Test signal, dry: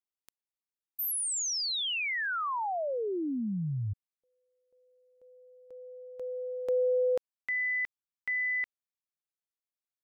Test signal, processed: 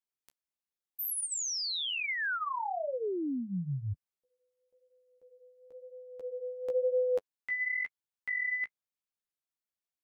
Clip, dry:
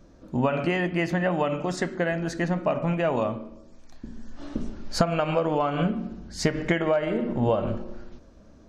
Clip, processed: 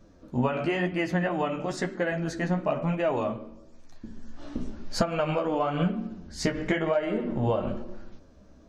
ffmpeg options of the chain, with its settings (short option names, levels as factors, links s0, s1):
-af "flanger=delay=9.3:depth=7.4:regen=-12:speed=0.99:shape=sinusoidal,volume=1.12"